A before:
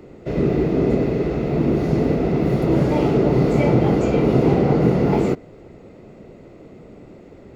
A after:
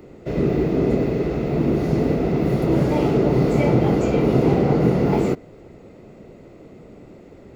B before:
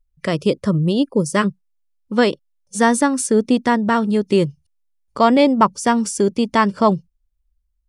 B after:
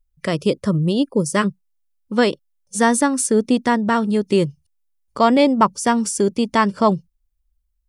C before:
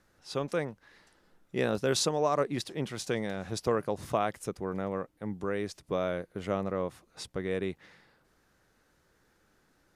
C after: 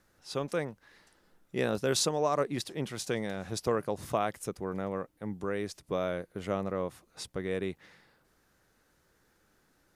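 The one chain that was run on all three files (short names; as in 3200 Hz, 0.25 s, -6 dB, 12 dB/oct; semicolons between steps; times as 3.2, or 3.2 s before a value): high shelf 9200 Hz +6.5 dB; gain -1 dB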